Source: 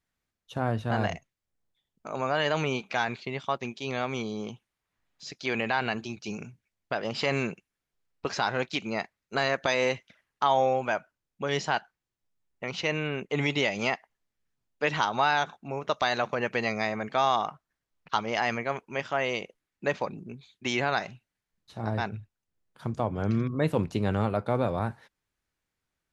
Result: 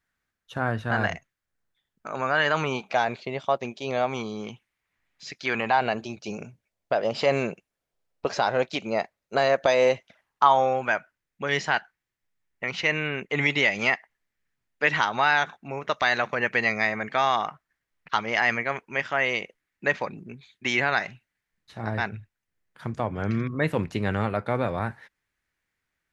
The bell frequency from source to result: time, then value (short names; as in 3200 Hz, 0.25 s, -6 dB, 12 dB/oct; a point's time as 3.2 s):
bell +9.5 dB 0.86 oct
2.43 s 1600 Hz
3.01 s 600 Hz
3.99 s 600 Hz
4.5 s 2100 Hz
5.38 s 2100 Hz
5.85 s 590 Hz
9.94 s 590 Hz
10.95 s 1900 Hz